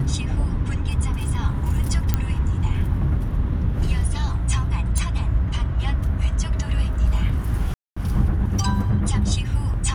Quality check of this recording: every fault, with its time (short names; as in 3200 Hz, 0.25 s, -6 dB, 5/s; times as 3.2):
2.14 pop -6 dBFS
4.98 pop
7.74–7.96 gap 0.225 s